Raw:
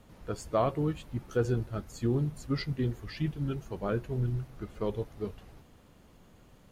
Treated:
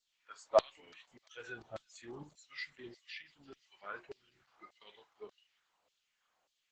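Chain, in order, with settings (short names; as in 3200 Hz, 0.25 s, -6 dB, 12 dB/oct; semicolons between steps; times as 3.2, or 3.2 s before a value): spectral noise reduction 14 dB; 4.35–4.96 bell 1200 Hz -> 210 Hz +5 dB 2.9 oct; harmonic-percussive split percussive -12 dB; 1.37–2.23 low shelf 420 Hz +12 dB; 3.01–3.57 compressor 6:1, threshold -36 dBFS, peak gain reduction 8.5 dB; LFO high-pass saw down 1.7 Hz 600–4800 Hz; thin delay 0.343 s, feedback 67%, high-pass 4300 Hz, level -16.5 dB; stuck buffer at 0.82, samples 512, times 8; gain +1 dB; Opus 10 kbps 48000 Hz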